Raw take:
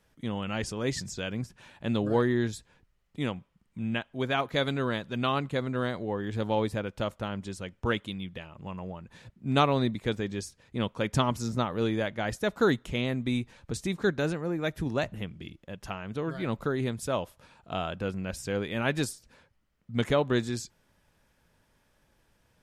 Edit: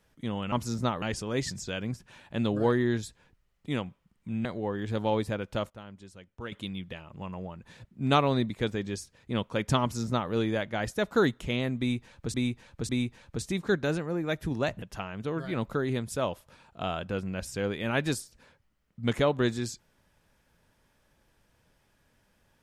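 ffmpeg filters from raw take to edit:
-filter_complex "[0:a]asplit=9[a][b][c][d][e][f][g][h][i];[a]atrim=end=0.522[j];[b]atrim=start=11.258:end=11.762[k];[c]atrim=start=0.518:end=3.952[l];[d]atrim=start=5.898:end=7.152[m];[e]atrim=start=7.148:end=7.972,asetpts=PTS-STARTPTS,volume=-11.5dB[n];[f]atrim=start=7.968:end=13.792[o];[g]atrim=start=13.238:end=13.792[p];[h]atrim=start=13.238:end=15.172[q];[i]atrim=start=15.728[r];[j][k]acrossfade=d=0.004:c1=hsin:c2=hsin[s];[s][l]acrossfade=d=0.004:c1=hsin:c2=hsin[t];[t][m]acrossfade=d=0.004:c1=hsin:c2=hsin[u];[u][n]acrossfade=d=0.004:c1=hsin:c2=hsin[v];[v][o]acrossfade=d=0.004:c1=hsin:c2=hsin[w];[w][p]acrossfade=d=0.004:c1=hsin:c2=hsin[x];[x][q]acrossfade=d=0.004:c1=hsin:c2=hsin[y];[y][r]acrossfade=d=0.004:c1=hsin:c2=hsin"

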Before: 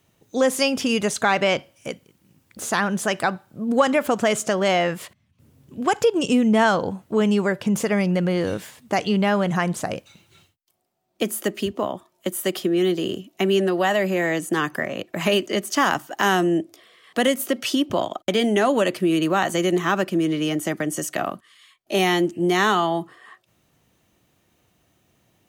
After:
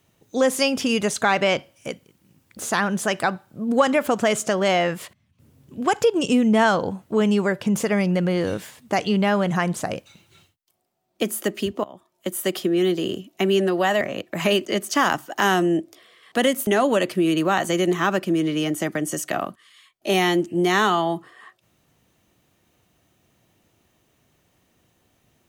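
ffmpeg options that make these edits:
-filter_complex "[0:a]asplit=4[a][b][c][d];[a]atrim=end=11.84,asetpts=PTS-STARTPTS,afade=t=out:st=11.836:d=0.004:c=hsin:silence=0.0944061[e];[b]atrim=start=11.84:end=14.012,asetpts=PTS-STARTPTS,afade=t=in:d=0.53:silence=0.0944061[f];[c]atrim=start=14.818:end=17.482[g];[d]atrim=start=18.518[h];[e][f]concat=n=2:v=0:a=1[i];[i][g]acrossfade=d=0.004:c1=hsin:c2=hsin[j];[j][h]acrossfade=d=0.004:c1=hsin:c2=hsin"

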